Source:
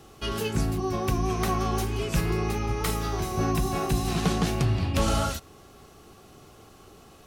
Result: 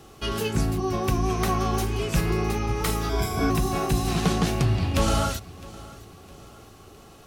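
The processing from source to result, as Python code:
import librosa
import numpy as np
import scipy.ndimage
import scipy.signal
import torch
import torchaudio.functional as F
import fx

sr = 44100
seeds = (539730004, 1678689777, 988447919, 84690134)

p1 = fx.ripple_eq(x, sr, per_octave=1.7, db=17, at=(3.09, 3.5))
p2 = p1 + fx.echo_feedback(p1, sr, ms=660, feedback_pct=44, wet_db=-20.5, dry=0)
y = F.gain(torch.from_numpy(p2), 2.0).numpy()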